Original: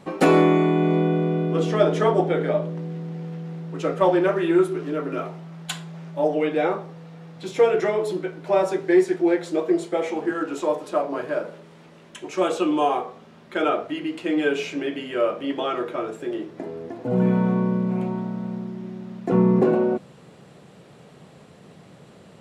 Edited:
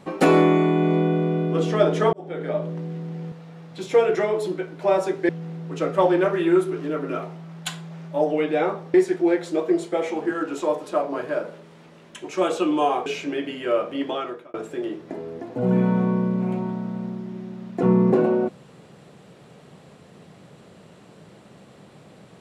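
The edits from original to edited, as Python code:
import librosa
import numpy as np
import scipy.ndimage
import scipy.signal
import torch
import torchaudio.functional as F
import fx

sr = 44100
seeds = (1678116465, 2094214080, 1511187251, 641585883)

y = fx.edit(x, sr, fx.fade_in_span(start_s=2.13, length_s=0.58),
    fx.move(start_s=6.97, length_s=1.97, to_s=3.32),
    fx.cut(start_s=13.06, length_s=1.49),
    fx.fade_out_span(start_s=15.56, length_s=0.47), tone=tone)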